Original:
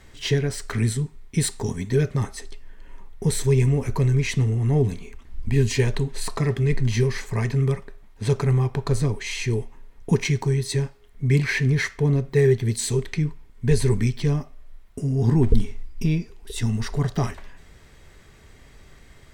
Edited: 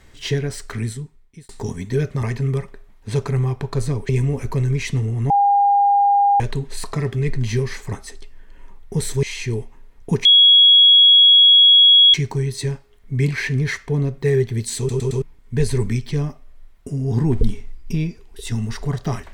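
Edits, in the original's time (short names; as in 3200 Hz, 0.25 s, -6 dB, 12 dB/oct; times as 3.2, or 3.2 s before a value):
0.57–1.49 fade out
2.23–3.53 swap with 7.37–9.23
4.74–5.84 bleep 807 Hz -11.5 dBFS
10.25 add tone 3330 Hz -7 dBFS 1.89 s
12.89 stutter in place 0.11 s, 4 plays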